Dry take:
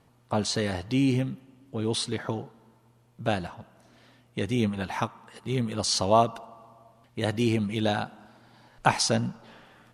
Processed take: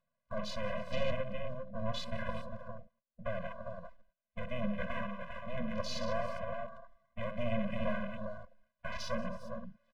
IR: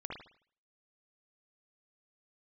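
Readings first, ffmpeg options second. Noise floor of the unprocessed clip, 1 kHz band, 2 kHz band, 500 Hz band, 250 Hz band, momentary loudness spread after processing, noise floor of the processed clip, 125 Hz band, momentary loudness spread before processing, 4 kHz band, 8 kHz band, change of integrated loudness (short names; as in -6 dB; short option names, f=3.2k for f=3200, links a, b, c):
-62 dBFS, -12.5 dB, -7.5 dB, -8.0 dB, -12.5 dB, 12 LU, under -85 dBFS, -12.5 dB, 16 LU, -14.0 dB, -21.5 dB, -12.0 dB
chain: -af "agate=range=-23dB:threshold=-51dB:ratio=16:detection=peak,asoftclip=type=tanh:threshold=-19.5dB,highpass=260,lowpass=2k,aemphasis=mode=production:type=riaa,alimiter=level_in=3dB:limit=-24dB:level=0:latency=1:release=93,volume=-3dB,aecho=1:1:63|179|181|321|402:0.376|0.178|0.178|0.251|0.501,acompressor=mode=upward:threshold=-52dB:ratio=2.5,lowshelf=f=480:g=11.5,aeval=exprs='max(val(0),0)':c=same,afwtdn=0.00562,afftfilt=real='re*eq(mod(floor(b*sr/1024/240),2),0)':imag='im*eq(mod(floor(b*sr/1024/240),2),0)':win_size=1024:overlap=0.75,volume=3dB"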